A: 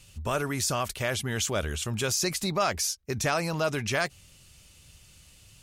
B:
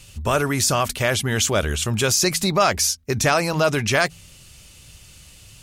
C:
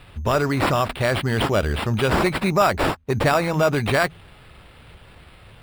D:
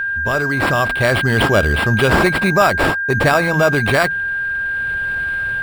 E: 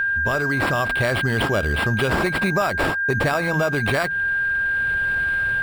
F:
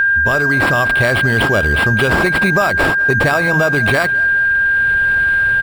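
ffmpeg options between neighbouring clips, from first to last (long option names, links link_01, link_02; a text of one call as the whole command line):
ffmpeg -i in.wav -af "bandreject=frequency=82.57:width_type=h:width=4,bandreject=frequency=165.14:width_type=h:width=4,bandreject=frequency=247.71:width_type=h:width=4,volume=8.5dB" out.wav
ffmpeg -i in.wav -af "acrusher=samples=7:mix=1:aa=0.000001,highshelf=frequency=3600:gain=-11,volume=1dB" out.wav
ffmpeg -i in.wav -af "dynaudnorm=framelen=510:gausssize=3:maxgain=12dB,aeval=exprs='val(0)+0.141*sin(2*PI*1600*n/s)':channel_layout=same,volume=-1dB" out.wav
ffmpeg -i in.wav -af "acompressor=threshold=-18dB:ratio=4" out.wav
ffmpeg -i in.wav -af "aeval=exprs='val(0)+0.0501*sin(2*PI*1600*n/s)':channel_layout=same,aecho=1:1:206|412|618:0.0944|0.0444|0.0209,volume=5.5dB" out.wav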